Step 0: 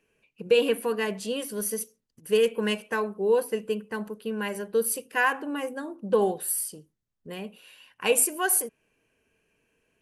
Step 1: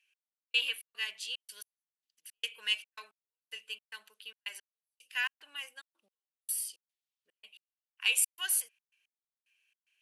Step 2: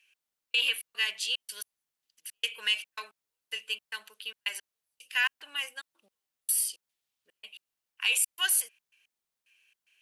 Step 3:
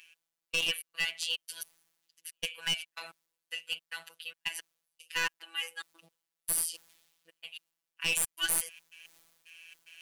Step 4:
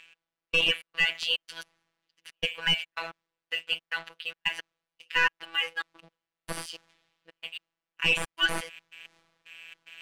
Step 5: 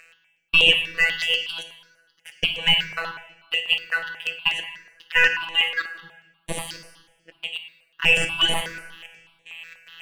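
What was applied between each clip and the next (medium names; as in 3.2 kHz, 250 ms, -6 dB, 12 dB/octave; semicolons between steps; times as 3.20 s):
treble shelf 4.9 kHz -7.5 dB; trance gate "x...xx.xxx." 111 bpm -60 dB; resonant high-pass 3 kHz, resonance Q 1.8
peak limiter -24 dBFS, peak gain reduction 10 dB; trim +8 dB
one-sided wavefolder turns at -22.5 dBFS; reverse; upward compressor, threshold -36 dBFS; reverse; robot voice 165 Hz
Bessel low-pass 2.3 kHz, order 2; waveshaping leveller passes 1; trim +7.5 dB
plate-style reverb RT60 1.1 s, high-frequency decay 0.9×, DRR 6 dB; stepped phaser 8.2 Hz 910–4900 Hz; trim +8.5 dB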